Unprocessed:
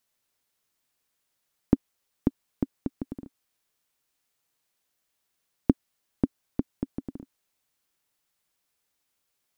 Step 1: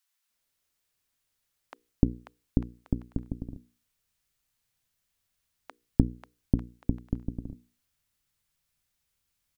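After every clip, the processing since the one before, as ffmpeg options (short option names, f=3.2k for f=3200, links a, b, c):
-filter_complex "[0:a]bandreject=f=60:t=h:w=6,bandreject=f=120:t=h:w=6,bandreject=f=180:t=h:w=6,bandreject=f=240:t=h:w=6,bandreject=f=300:t=h:w=6,bandreject=f=360:t=h:w=6,bandreject=f=420:t=h:w=6,bandreject=f=480:t=h:w=6,acrossover=split=830[a][b];[a]adelay=300[c];[c][b]amix=inputs=2:normalize=0,asubboost=boost=5.5:cutoff=140,volume=-1dB"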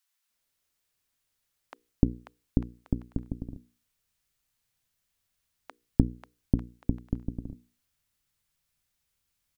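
-af anull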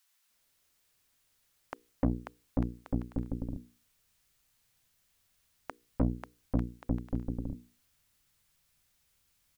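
-af "aeval=exprs='(tanh(25.1*val(0)+0.45)-tanh(0.45))/25.1':c=same,volume=8dB"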